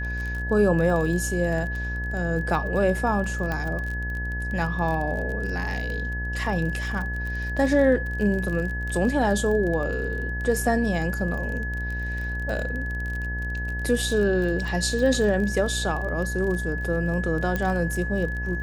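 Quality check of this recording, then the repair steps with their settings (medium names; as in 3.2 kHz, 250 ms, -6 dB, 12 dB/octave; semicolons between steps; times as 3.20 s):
buzz 60 Hz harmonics 18 -30 dBFS
crackle 30 per s -30 dBFS
whine 1.7 kHz -31 dBFS
3.52 s: pop -16 dBFS
17.56 s: pop -13 dBFS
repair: de-click; band-stop 1.7 kHz, Q 30; de-hum 60 Hz, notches 18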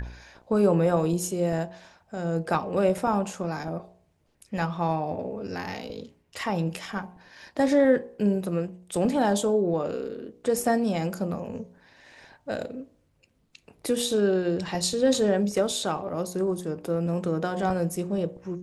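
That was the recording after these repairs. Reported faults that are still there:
nothing left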